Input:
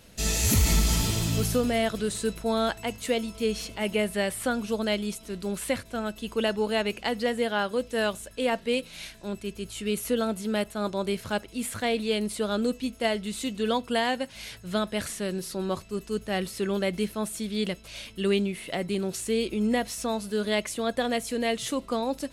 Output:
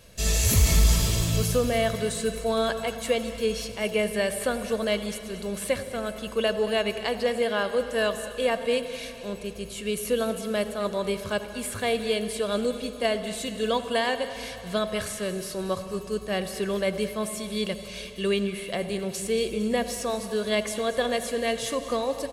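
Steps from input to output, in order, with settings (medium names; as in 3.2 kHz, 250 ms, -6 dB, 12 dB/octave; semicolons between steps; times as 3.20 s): comb 1.8 ms, depth 45%; two-band feedback delay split 970 Hz, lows 94 ms, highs 228 ms, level -15 dB; on a send at -11 dB: reverberation RT60 3.2 s, pre-delay 58 ms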